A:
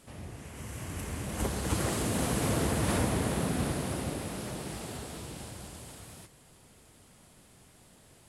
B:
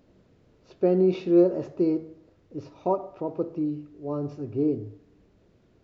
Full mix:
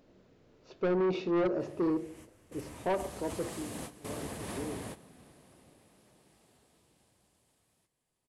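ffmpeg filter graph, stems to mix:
-filter_complex "[0:a]bandreject=f=1.4k:w=13,adelay=1600,volume=-9.5dB[a];[1:a]bandreject=f=50:t=h:w=6,bandreject=f=100:t=h:w=6,bandreject=f=150:t=h:w=6,bandreject=f=200:t=h:w=6,bandreject=f=250:t=h:w=6,bandreject=f=300:t=h:w=6,bandreject=f=350:t=h:w=6,afade=t=out:st=3.05:d=0.65:silence=0.251189,asplit=2[b][c];[c]apad=whole_len=435793[d];[a][d]sidechaingate=range=-15dB:threshold=-52dB:ratio=16:detection=peak[e];[e][b]amix=inputs=2:normalize=0,equalizer=f=71:t=o:w=2.5:g=-6,asoftclip=type=tanh:threshold=-25dB"

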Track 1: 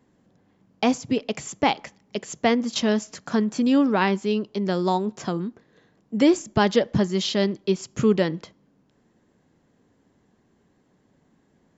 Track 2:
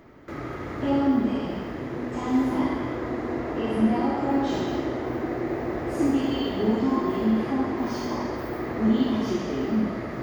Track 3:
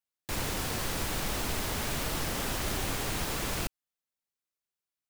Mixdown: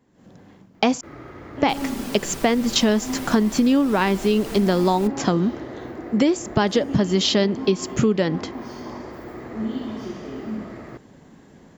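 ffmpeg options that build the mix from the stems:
-filter_complex "[0:a]dynaudnorm=f=140:g=3:m=15.5dB,volume=-1dB,asplit=3[a][b][c];[a]atrim=end=1.01,asetpts=PTS-STARTPTS,afade=t=out:st=1.006:d=0.004:c=hsin[d];[b]atrim=start=1.01:end=1.6,asetpts=PTS-STARTPTS,volume=0[e];[c]atrim=start=1.6,asetpts=PTS-STARTPTS,afade=t=in:d=0.004:c=hsin[f];[d][e][f]concat=n=3:v=0:a=1[g];[1:a]equalizer=f=12k:t=o:w=0.82:g=-3.5,adelay=750,volume=-6dB[h];[2:a]aecho=1:1:5.1:0.73,adelay=1400,volume=-5dB[i];[g][h][i]amix=inputs=3:normalize=0,acompressor=threshold=-15dB:ratio=6"

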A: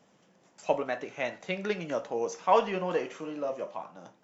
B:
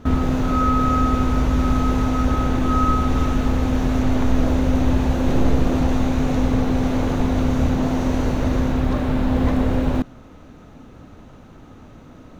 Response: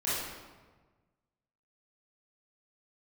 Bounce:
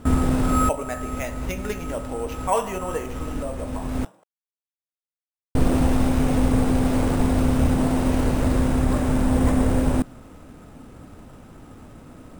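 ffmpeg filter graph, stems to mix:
-filter_complex "[0:a]volume=0dB,asplit=3[a][b][c];[b]volume=-19dB[d];[1:a]volume=-0.5dB,asplit=3[e][f][g];[e]atrim=end=4.05,asetpts=PTS-STARTPTS,afade=t=out:st=4.046:d=0.004:c=hsin[h];[f]atrim=start=4.05:end=5.55,asetpts=PTS-STARTPTS,volume=0[i];[g]atrim=start=5.55,asetpts=PTS-STARTPTS,afade=t=in:d=0.004:c=hsin[j];[h][i][j]concat=n=3:v=0:a=1[k];[c]apad=whole_len=546729[l];[k][l]sidechaincompress=threshold=-45dB:ratio=4:attack=26:release=411[m];[2:a]atrim=start_sample=2205[n];[d][n]afir=irnorm=-1:irlink=0[o];[a][m][o]amix=inputs=3:normalize=0,acrusher=samples=5:mix=1:aa=0.000001"

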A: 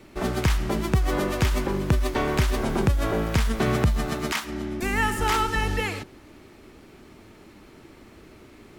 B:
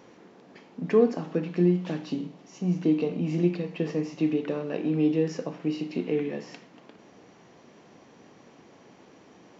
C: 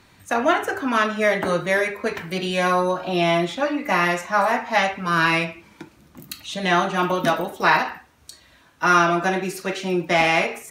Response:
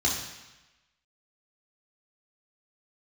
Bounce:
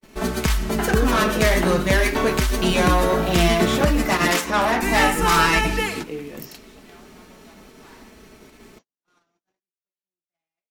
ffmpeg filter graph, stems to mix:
-filter_complex "[0:a]aecho=1:1:4.6:0.59,volume=0.5dB[a];[1:a]highshelf=f=3.8k:g=9.5,volume=-5dB,asplit=2[b][c];[2:a]asoftclip=type=tanh:threshold=-19dB,adelay=200,volume=3dB[d];[c]apad=whole_len=480790[e];[d][e]sidechaingate=range=-32dB:threshold=-44dB:ratio=16:detection=peak[f];[a][b][f]amix=inputs=3:normalize=0,agate=range=-47dB:threshold=-47dB:ratio=16:detection=peak,highshelf=f=4.7k:g=6.5"

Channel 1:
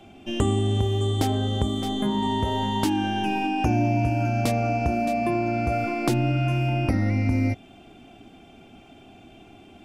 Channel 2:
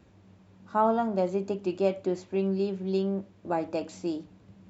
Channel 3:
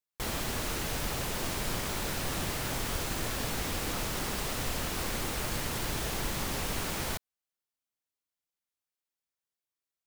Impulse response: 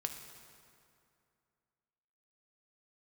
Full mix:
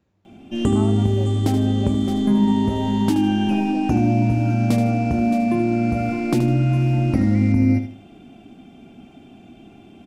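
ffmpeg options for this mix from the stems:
-filter_complex "[0:a]equalizer=f=210:w=1:g=9.5,adelay=250,volume=-2dB,asplit=2[a][b];[b]volume=-9.5dB[c];[1:a]volume=-10.5dB[d];[2:a]lowpass=f=8.4k:w=0.5412,lowpass=f=8.4k:w=1.3066,adelay=350,volume=-14.5dB[e];[c]aecho=0:1:77|154|231|308:1|0.31|0.0961|0.0298[f];[a][d][e][f]amix=inputs=4:normalize=0"

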